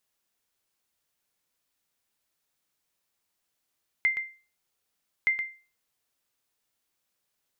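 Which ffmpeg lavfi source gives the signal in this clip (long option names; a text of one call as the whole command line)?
ffmpeg -f lavfi -i "aevalsrc='0.15*(sin(2*PI*2090*mod(t,1.22))*exp(-6.91*mod(t,1.22)/0.35)+0.376*sin(2*PI*2090*max(mod(t,1.22)-0.12,0))*exp(-6.91*max(mod(t,1.22)-0.12,0)/0.35))':duration=2.44:sample_rate=44100" out.wav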